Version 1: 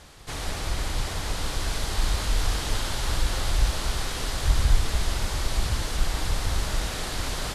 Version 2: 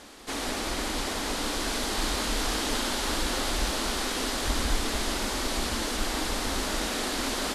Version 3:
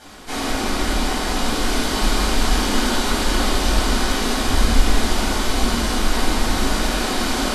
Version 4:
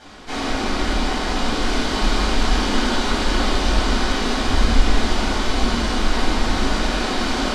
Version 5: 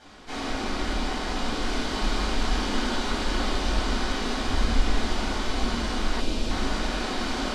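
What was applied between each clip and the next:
resonant low shelf 180 Hz -10.5 dB, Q 3; trim +2 dB
simulated room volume 1000 m³, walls furnished, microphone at 7.8 m; trim -1.5 dB
low-pass 5.7 kHz 12 dB/octave
time-frequency box 6.20–6.51 s, 670–2300 Hz -8 dB; trim -7 dB

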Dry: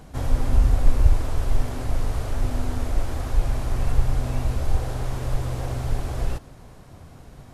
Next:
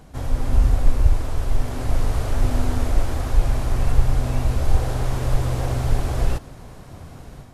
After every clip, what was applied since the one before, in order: level rider gain up to 7 dB; trim -1.5 dB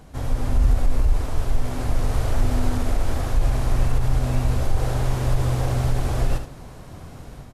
peak limiter -11 dBFS, peak gain reduction 8 dB; delay 73 ms -9 dB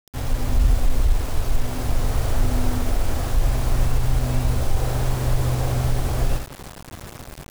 word length cut 6-bit, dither none

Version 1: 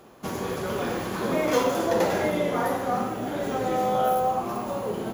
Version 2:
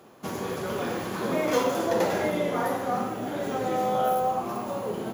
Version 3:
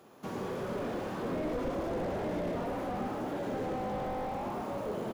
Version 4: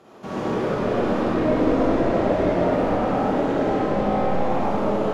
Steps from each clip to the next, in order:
high-pass 84 Hz; trim -1.5 dB
frequency-shifting echo 113 ms, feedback 50%, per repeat +49 Hz, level -5 dB; slew-rate limiter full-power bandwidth 23 Hz; trim -5 dB
distance through air 53 m; algorithmic reverb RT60 2.2 s, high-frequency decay 0.6×, pre-delay 15 ms, DRR -7 dB; trim +5.5 dB

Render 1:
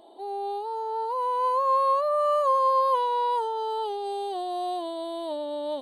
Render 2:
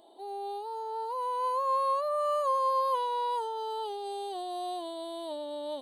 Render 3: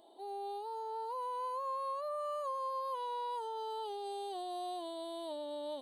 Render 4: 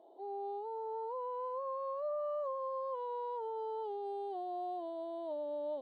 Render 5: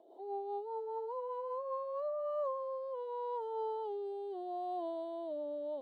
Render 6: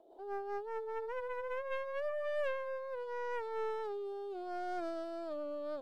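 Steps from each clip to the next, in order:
treble shelf 3.8 kHz +7.5 dB; trim -6 dB
compression 4:1, threshold -33 dBFS, peak gain reduction 7.5 dB; trim -3.5 dB
band-pass filter 510 Hz, Q 1.4; trim +4 dB
rotary cabinet horn 5 Hz, later 0.75 Hz, at 1.64 s; trim +3 dB
tracing distortion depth 0.32 ms; trim -1 dB

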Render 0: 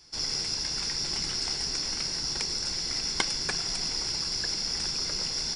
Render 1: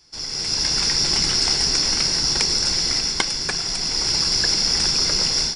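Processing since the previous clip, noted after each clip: level rider gain up to 11.5 dB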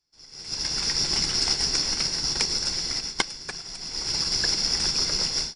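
upward expansion 2.5:1, over -32 dBFS; trim -2.5 dB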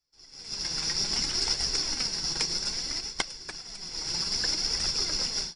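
flange 0.62 Hz, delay 1.4 ms, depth 5.1 ms, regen +51%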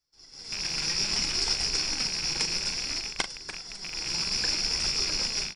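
rattle on loud lows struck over -49 dBFS, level -25 dBFS; doubling 40 ms -10 dB

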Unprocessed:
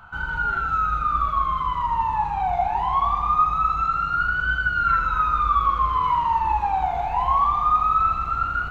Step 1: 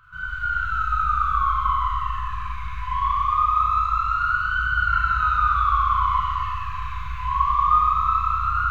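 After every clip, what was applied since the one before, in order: FFT band-reject 170–1000 Hz; Schroeder reverb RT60 3.2 s, combs from 31 ms, DRR -7.5 dB; trim -7.5 dB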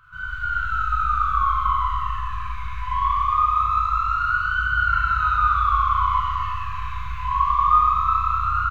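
doubling 22 ms -11 dB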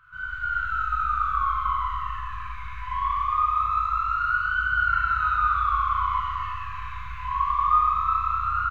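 peaking EQ 1.8 kHz +6.5 dB 1.2 oct; trim -7 dB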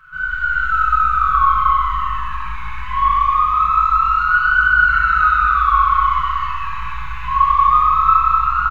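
comb 5.4 ms, depth 88%; frequency-shifting echo 248 ms, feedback 58%, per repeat -52 Hz, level -19 dB; trim +7 dB

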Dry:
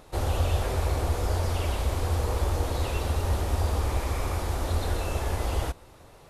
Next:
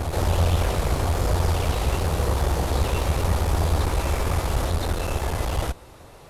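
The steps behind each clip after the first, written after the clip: one-sided clip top -33 dBFS; reverse echo 1022 ms -3.5 dB; trim +5.5 dB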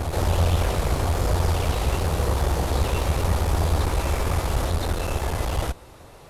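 no audible change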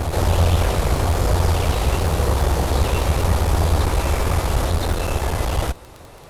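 crackle 20 per s -29 dBFS; trim +4 dB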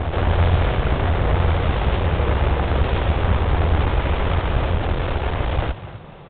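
self-modulated delay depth 0.72 ms; frequency-shifting echo 249 ms, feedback 35%, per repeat +42 Hz, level -14 dB; G.726 40 kbps 8 kHz

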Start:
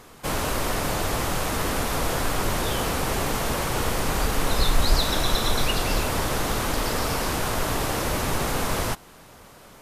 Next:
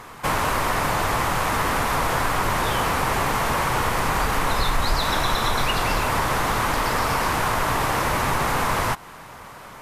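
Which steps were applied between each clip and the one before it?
graphic EQ 125/1000/2000 Hz +4/+9/+6 dB; compression 2:1, threshold -23 dBFS, peak gain reduction 6.5 dB; trim +2 dB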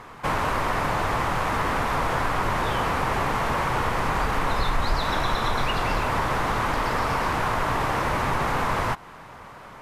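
low-pass 3 kHz 6 dB/octave; trim -1.5 dB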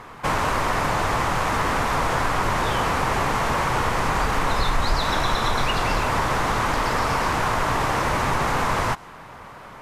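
dynamic bell 6.8 kHz, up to +5 dB, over -49 dBFS, Q 0.92; trim +2 dB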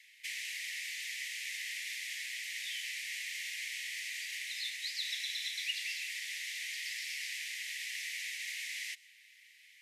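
steep high-pass 1.9 kHz 96 dB/octave; trim -7.5 dB

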